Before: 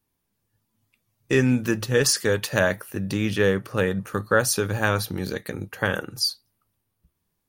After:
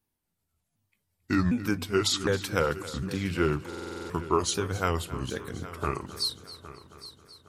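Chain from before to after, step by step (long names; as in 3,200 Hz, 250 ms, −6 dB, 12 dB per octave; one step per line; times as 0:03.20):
pitch shifter swept by a sawtooth −6.5 semitones, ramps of 757 ms
echo machine with several playback heads 271 ms, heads first and third, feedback 48%, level −16.5 dB
buffer that repeats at 0:03.68, samples 2,048, times 8
level −4.5 dB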